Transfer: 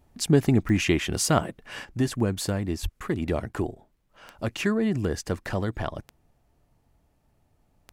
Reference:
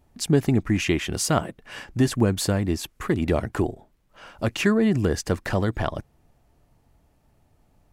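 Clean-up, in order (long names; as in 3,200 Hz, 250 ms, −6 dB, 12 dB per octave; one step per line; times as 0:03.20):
click removal
0:02.82–0:02.94: high-pass filter 140 Hz 24 dB per octave
repair the gap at 0:03.00/0:03.53, 6.1 ms
0:01.85: level correction +4.5 dB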